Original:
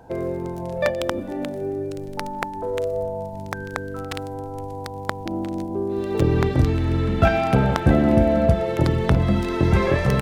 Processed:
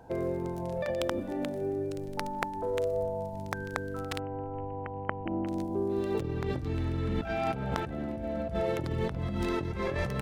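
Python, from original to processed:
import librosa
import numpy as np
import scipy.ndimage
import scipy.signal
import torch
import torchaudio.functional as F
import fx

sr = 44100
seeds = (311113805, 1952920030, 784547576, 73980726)

y = fx.over_compress(x, sr, threshold_db=-23.0, ratio=-1.0)
y = fx.brickwall_lowpass(y, sr, high_hz=3100.0, at=(4.19, 5.47))
y = y * librosa.db_to_amplitude(-8.0)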